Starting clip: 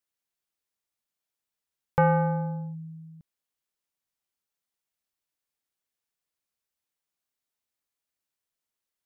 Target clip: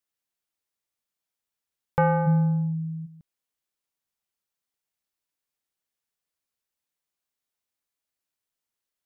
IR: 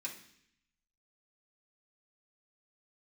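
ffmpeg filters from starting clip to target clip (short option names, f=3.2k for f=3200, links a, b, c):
-filter_complex "[0:a]asplit=3[a][b][c];[a]afade=t=out:st=2.26:d=0.02[d];[b]asubboost=boost=7:cutoff=190,afade=t=in:st=2.26:d=0.02,afade=t=out:st=3.05:d=0.02[e];[c]afade=t=in:st=3.05:d=0.02[f];[d][e][f]amix=inputs=3:normalize=0"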